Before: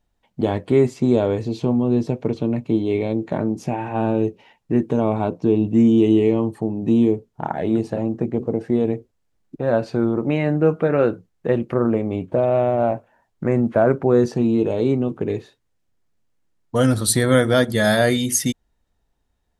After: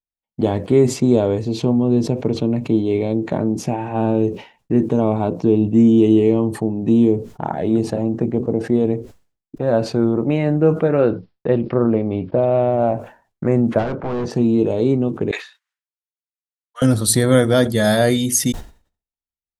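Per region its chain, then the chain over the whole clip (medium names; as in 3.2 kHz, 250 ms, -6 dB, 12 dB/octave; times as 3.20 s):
11.01–12.73 s: expander -36 dBFS + careless resampling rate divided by 4×, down none, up filtered
13.78–14.30 s: spectral peaks clipped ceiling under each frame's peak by 15 dB + overload inside the chain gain 21 dB + tape spacing loss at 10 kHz 25 dB
15.31–16.82 s: high-pass 1.4 kHz 24 dB/octave + tilt EQ -4 dB/octave
whole clip: expander -40 dBFS; dynamic bell 1.8 kHz, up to -5 dB, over -36 dBFS, Q 0.77; decay stretcher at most 140 dB/s; trim +2.5 dB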